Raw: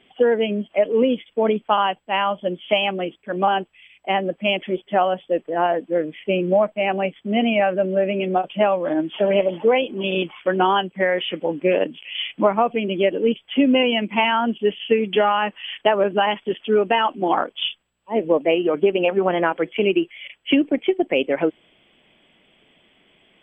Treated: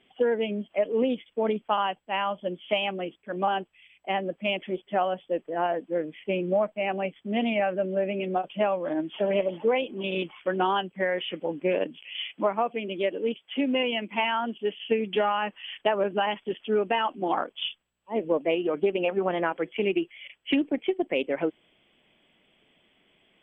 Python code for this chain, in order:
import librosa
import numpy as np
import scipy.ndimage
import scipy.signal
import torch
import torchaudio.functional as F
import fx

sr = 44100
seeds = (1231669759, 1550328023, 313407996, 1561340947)

y = fx.highpass(x, sr, hz=270.0, slope=6, at=(12.24, 14.8))
y = fx.doppler_dist(y, sr, depth_ms=0.1)
y = y * librosa.db_to_amplitude(-7.0)